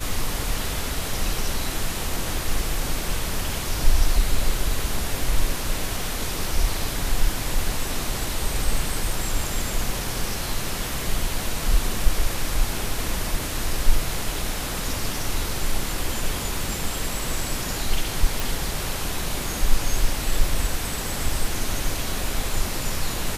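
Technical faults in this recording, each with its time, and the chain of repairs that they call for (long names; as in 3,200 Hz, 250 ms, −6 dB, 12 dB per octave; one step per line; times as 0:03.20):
0:18.40: click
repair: click removal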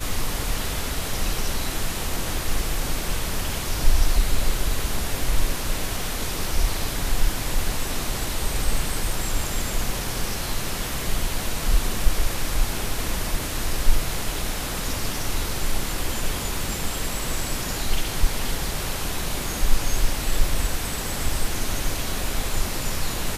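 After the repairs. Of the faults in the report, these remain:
none of them is left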